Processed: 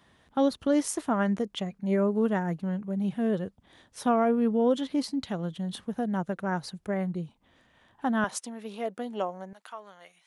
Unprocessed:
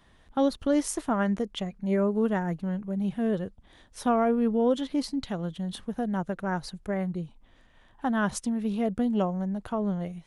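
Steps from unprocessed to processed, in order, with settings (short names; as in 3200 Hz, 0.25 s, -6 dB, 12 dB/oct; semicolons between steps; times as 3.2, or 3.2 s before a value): HPF 90 Hz 12 dB/oct, from 8.24 s 460 Hz, from 9.53 s 1300 Hz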